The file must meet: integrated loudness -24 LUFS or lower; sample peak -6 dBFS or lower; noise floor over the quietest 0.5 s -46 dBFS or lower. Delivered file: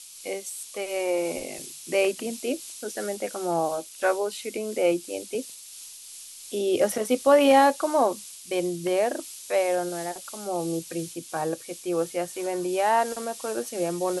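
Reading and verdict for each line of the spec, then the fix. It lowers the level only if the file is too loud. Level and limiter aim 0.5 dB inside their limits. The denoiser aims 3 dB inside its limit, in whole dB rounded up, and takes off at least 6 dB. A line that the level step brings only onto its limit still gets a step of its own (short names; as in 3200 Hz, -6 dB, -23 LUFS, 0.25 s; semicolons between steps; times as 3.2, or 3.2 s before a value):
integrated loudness -26.5 LUFS: OK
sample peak -8.0 dBFS: OK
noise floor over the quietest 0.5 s -44 dBFS: fail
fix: denoiser 6 dB, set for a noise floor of -44 dBFS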